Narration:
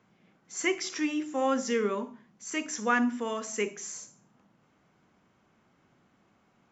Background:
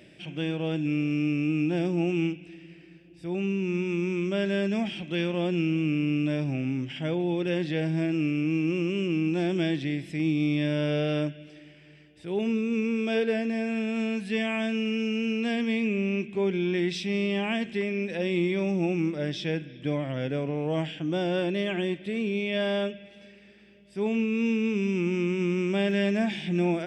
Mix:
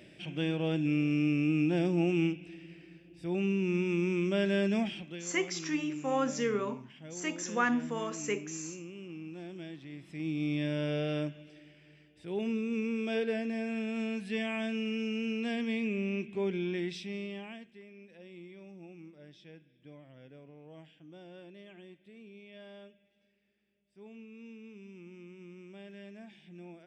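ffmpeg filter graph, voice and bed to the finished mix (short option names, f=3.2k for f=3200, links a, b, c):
-filter_complex "[0:a]adelay=4700,volume=-3dB[a];[1:a]volume=9.5dB,afade=t=out:st=4.78:d=0.43:silence=0.16788,afade=t=in:st=9.88:d=0.67:silence=0.266073,afade=t=out:st=16.53:d=1.18:silence=0.133352[b];[a][b]amix=inputs=2:normalize=0"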